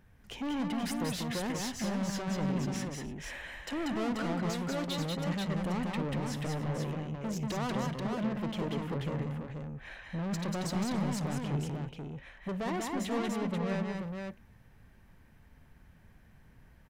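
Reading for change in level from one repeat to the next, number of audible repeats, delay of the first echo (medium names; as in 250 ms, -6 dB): no regular repeats, 4, 55 ms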